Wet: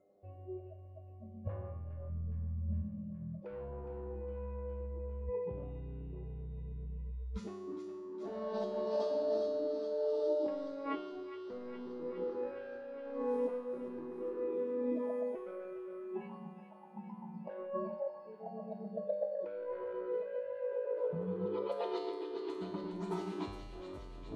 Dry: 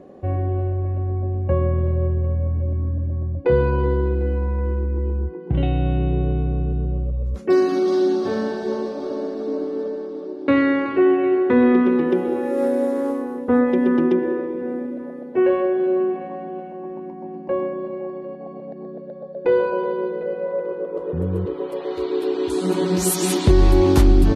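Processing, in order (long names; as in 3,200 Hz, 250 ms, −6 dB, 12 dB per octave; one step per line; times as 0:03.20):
noise reduction from a noise print of the clip's start 29 dB
treble cut that deepens with the level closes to 690 Hz, closed at −14.5 dBFS
graphic EQ with 15 bands 250 Hz −3 dB, 630 Hz +9 dB, 1,600 Hz −8 dB
soft clipping −15 dBFS, distortion −12 dB
compressor whose output falls as the input rises −31 dBFS, ratio −1
tuned comb filter 100 Hz, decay 1.2 s, harmonics all, mix 90%
on a send: delay with a high-pass on its return 413 ms, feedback 75%, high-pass 1,700 Hz, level −8 dB
on the sum: level +7 dB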